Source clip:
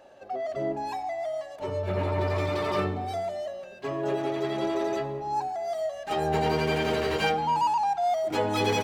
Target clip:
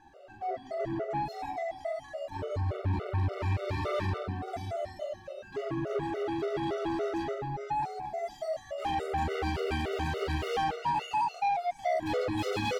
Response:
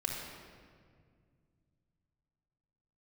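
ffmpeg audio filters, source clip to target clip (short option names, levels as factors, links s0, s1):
-filter_complex "[0:a]atempo=0.69,lowshelf=f=130:g=9.5,aecho=1:1:42|132:0.596|0.376,asplit=2[s0][s1];[1:a]atrim=start_sample=2205,afade=t=out:st=0.28:d=0.01,atrim=end_sample=12789,highshelf=f=4800:g=8.5[s2];[s1][s2]afir=irnorm=-1:irlink=0,volume=0.794[s3];[s0][s3]amix=inputs=2:normalize=0,asoftclip=type=tanh:threshold=0.106,highshelf=f=5000:g=-7.5,afftfilt=real='re*gt(sin(2*PI*3.5*pts/sr)*(1-2*mod(floor(b*sr/1024/380),2)),0)':imag='im*gt(sin(2*PI*3.5*pts/sr)*(1-2*mod(floor(b*sr/1024/380),2)),0)':win_size=1024:overlap=0.75,volume=0.562"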